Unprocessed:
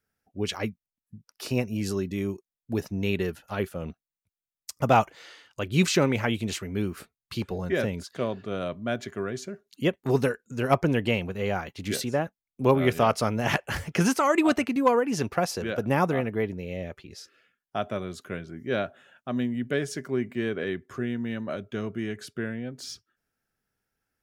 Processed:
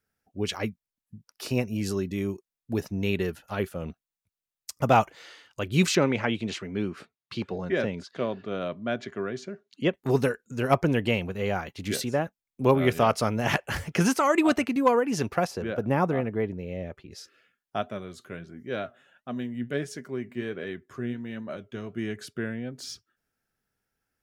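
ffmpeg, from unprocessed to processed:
-filter_complex "[0:a]asettb=1/sr,asplit=3[s0][s1][s2];[s0]atrim=end=5.954[s3];[s1]atrim=start=5.95:end=9.94,asetpts=PTS-STARTPTS,afade=t=in:d=0.004:c=qsin,afade=t=out:st=3.986:d=0.004:c=qsin,highpass=130,lowpass=4900[s4];[s2]atrim=start=9.936[s5];[s3][s4]acrossfade=d=0.004:c1=hsin:c2=qsin[s6];[s6][s5]acrossfade=d=0.004:c1=qsin:c2=hsin,asettb=1/sr,asplit=3[s7][s8][s9];[s7]atrim=end=15.474[s10];[s8]atrim=start=15.47:end=17.12,asetpts=PTS-STARTPTS,afade=t=in:d=0.004:c=qsin,afade=t=out:st=1.646:d=0.004:c=qsin,highshelf=f=2400:g=-9.5[s11];[s9]atrim=start=17.116[s12];[s10][s11]acrossfade=d=0.004:c1=hsin:c2=qsin[s13];[s13][s12]acrossfade=d=0.004:c1=qsin:c2=hsin,asplit=3[s14][s15][s16];[s14]afade=t=out:st=17.81:d=0.02[s17];[s15]flanger=delay=3.9:depth=4.7:regen=72:speed=1.4:shape=triangular,afade=t=in:st=17.81:d=0.02,afade=t=out:st=21.96:d=0.02[s18];[s16]afade=t=in:st=21.96:d=0.02[s19];[s17][s18][s19]amix=inputs=3:normalize=0"

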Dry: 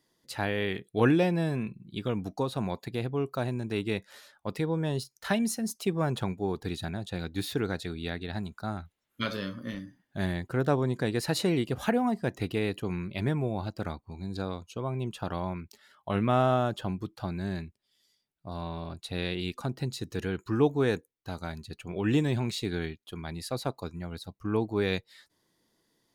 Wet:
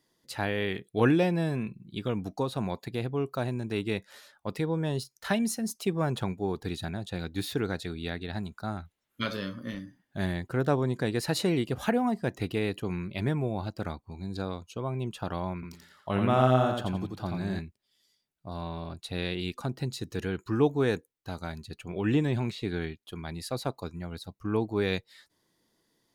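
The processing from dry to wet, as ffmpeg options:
-filter_complex "[0:a]asettb=1/sr,asplit=3[s0][s1][s2];[s0]atrim=end=15.544[s3];[s1]atrim=start=15.54:end=17.59,asetpts=PTS-STARTPTS,afade=t=in:d=0.004:c=qsin,afade=t=out:st=2.046:d=0.004:c=qsin,aecho=1:1:86|172|258|344:0.631|0.189|0.0568|0.017,atrim=end_sample=90405[s4];[s2]atrim=start=17.586[s5];[s3][s4]acrossfade=d=0.004:c1=hsin:c2=qsin[s6];[s6][s5]acrossfade=d=0.004:c1=qsin:c2=hsin,asettb=1/sr,asplit=3[s7][s8][s9];[s7]atrim=end=21.964[s10];[s8]atrim=start=21.96:end=23.01,asetpts=PTS-STARTPTS,afade=t=in:d=0.004:c=qsin,afade=t=out:st=1.046:d=0.004:c=qsin,acrossover=split=3400[s11][s12];[s12]acompressor=threshold=0.00316:ratio=4:attack=1:release=60[s13];[s11][s13]amix=inputs=2:normalize=0[s14];[s9]atrim=start=23.006[s15];[s10][s14]acrossfade=d=0.004:c1=hsin:c2=qsin[s16];[s16][s15]acrossfade=d=0.004:c1=qsin:c2=hsin"

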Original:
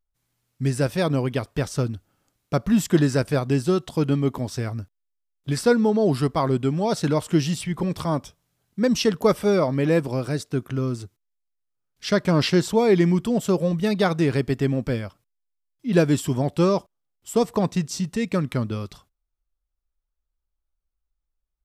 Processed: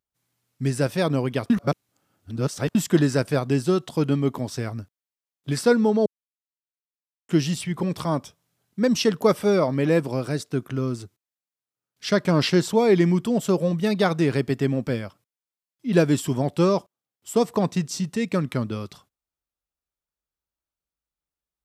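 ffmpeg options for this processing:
-filter_complex "[0:a]asplit=5[s0][s1][s2][s3][s4];[s0]atrim=end=1.502[s5];[s1]atrim=start=1.498:end=2.752,asetpts=PTS-STARTPTS,areverse[s6];[s2]atrim=start=2.748:end=6.06,asetpts=PTS-STARTPTS,afade=t=out:st=3.308:d=0.004:c=hsin[s7];[s3]atrim=start=6.06:end=7.29,asetpts=PTS-STARTPTS,volume=0[s8];[s4]atrim=start=7.29,asetpts=PTS-STARTPTS,afade=t=in:d=0.004:c=hsin[s9];[s5][s6]acrossfade=d=0.004:c1=hsin:c2=hsin[s10];[s7][s8][s9]concat=n=3:v=0:a=1[s11];[s10][s11]acrossfade=d=0.004:c1=hsin:c2=hsin,highpass=110"

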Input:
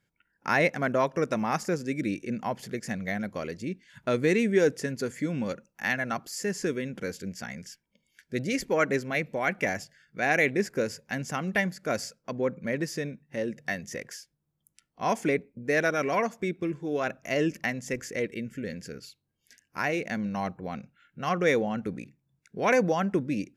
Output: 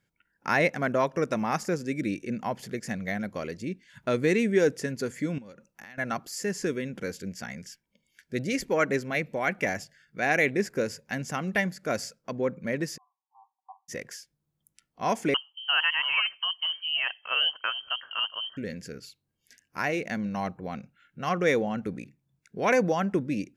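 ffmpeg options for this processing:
-filter_complex "[0:a]asettb=1/sr,asplit=3[s0][s1][s2];[s0]atrim=end=5.384[s3];[s1]atrim=start=5.38:end=5.98,asetpts=PTS-STARTPTS,afade=t=in:d=0.004:c=qsin,afade=t=out:st=0.596:d=0.004:c=qsin,acompressor=threshold=0.00794:ratio=20:attack=3.2:release=140:knee=1:detection=peak[s4];[s2]atrim=start=5.976[s5];[s3][s4]acrossfade=d=0.004:c1=hsin:c2=qsin[s6];[s6][s5]acrossfade=d=0.004:c1=qsin:c2=hsin,asplit=3[s7][s8][s9];[s7]afade=t=out:st=12.96:d=0.02[s10];[s8]asuperpass=centerf=940:order=20:qfactor=2.3,afade=t=in:st=12.96:d=0.02,afade=t=out:st=13.88:d=0.02[s11];[s9]afade=t=in:st=13.88:d=0.02[s12];[s10][s11][s12]amix=inputs=3:normalize=0,asettb=1/sr,asplit=3[s13][s14][s15];[s13]atrim=end=15.344[s16];[s14]atrim=start=15.34:end=18.57,asetpts=PTS-STARTPTS,afade=t=in:d=0.004:c=qsin,afade=t=out:st=3.226:d=0.004:c=qsin,lowpass=f=2800:t=q:w=0.5098,lowpass=f=2800:t=q:w=0.6013,lowpass=f=2800:t=q:w=0.9,lowpass=f=2800:t=q:w=2.563,afreqshift=-3300[s17];[s15]atrim=start=18.566[s18];[s16][s17]acrossfade=d=0.004:c1=hsin:c2=qsin[s19];[s19][s18]acrossfade=d=0.004:c1=qsin:c2=hsin"

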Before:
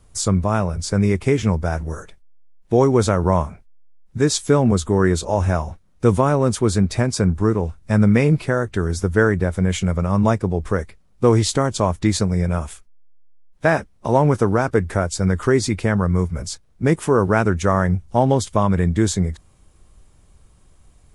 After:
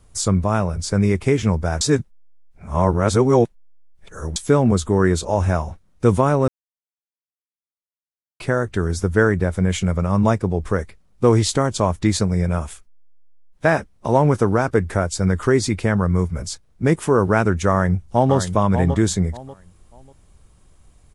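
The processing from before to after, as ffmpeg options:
-filter_complex "[0:a]asplit=2[s0][s1];[s1]afade=t=in:st=17.7:d=0.01,afade=t=out:st=18.35:d=0.01,aecho=0:1:590|1180|1770:0.375837|0.0939594|0.0234898[s2];[s0][s2]amix=inputs=2:normalize=0,asplit=5[s3][s4][s5][s6][s7];[s3]atrim=end=1.812[s8];[s4]atrim=start=1.808:end=4.362,asetpts=PTS-STARTPTS,areverse[s9];[s5]atrim=start=4.358:end=6.48,asetpts=PTS-STARTPTS,afade=t=out:st=2.118:d=0.004:c=hsin[s10];[s6]atrim=start=6.48:end=8.4,asetpts=PTS-STARTPTS,volume=0[s11];[s7]atrim=start=8.4,asetpts=PTS-STARTPTS,afade=t=in:d=0.004:c=hsin[s12];[s8][s9]acrossfade=d=0.004:c1=hsin:c2=hsin[s13];[s10][s11][s12]concat=n=3:v=0:a=1[s14];[s13][s14]acrossfade=d=0.004:c1=hsin:c2=hsin"

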